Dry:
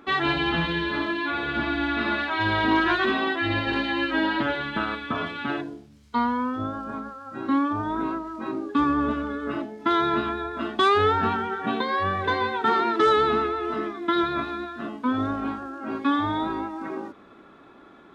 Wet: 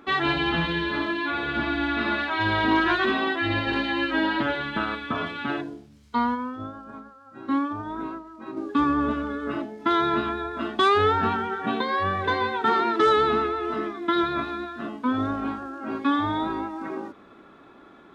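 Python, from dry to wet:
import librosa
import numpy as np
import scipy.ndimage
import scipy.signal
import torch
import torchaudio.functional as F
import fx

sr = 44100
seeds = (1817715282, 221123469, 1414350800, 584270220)

y = fx.upward_expand(x, sr, threshold_db=-37.0, expansion=1.5, at=(6.34, 8.56), fade=0.02)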